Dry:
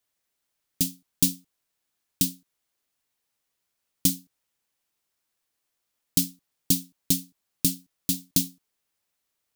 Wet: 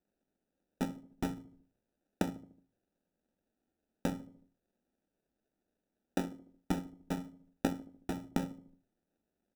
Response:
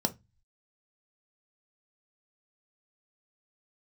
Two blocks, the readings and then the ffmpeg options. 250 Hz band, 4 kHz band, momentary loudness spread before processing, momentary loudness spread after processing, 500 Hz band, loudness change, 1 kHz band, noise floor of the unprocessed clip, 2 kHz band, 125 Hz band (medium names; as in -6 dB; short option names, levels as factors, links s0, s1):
-5.5 dB, -19.5 dB, 7 LU, 13 LU, +6.5 dB, -13.0 dB, no reading, -80 dBFS, +0.5 dB, -8.0 dB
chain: -filter_complex "[0:a]equalizer=f=7700:w=0.69:g=-14.5,bandreject=f=51.38:t=h:w=4,bandreject=f=102.76:t=h:w=4,bandreject=f=154.14:t=h:w=4,acompressor=threshold=0.0316:ratio=2.5,acrusher=samples=41:mix=1:aa=0.000001,asplit=2[s0][s1];[s1]adelay=74,lowpass=f=870:p=1,volume=0.178,asplit=2[s2][s3];[s3]adelay=74,lowpass=f=870:p=1,volume=0.54,asplit=2[s4][s5];[s5]adelay=74,lowpass=f=870:p=1,volume=0.54,asplit=2[s6][s7];[s7]adelay=74,lowpass=f=870:p=1,volume=0.54,asplit=2[s8][s9];[s9]adelay=74,lowpass=f=870:p=1,volume=0.54[s10];[s0][s2][s4][s6][s8][s10]amix=inputs=6:normalize=0,asplit=2[s11][s12];[1:a]atrim=start_sample=2205[s13];[s12][s13]afir=irnorm=-1:irlink=0,volume=0.224[s14];[s11][s14]amix=inputs=2:normalize=0,volume=0.501"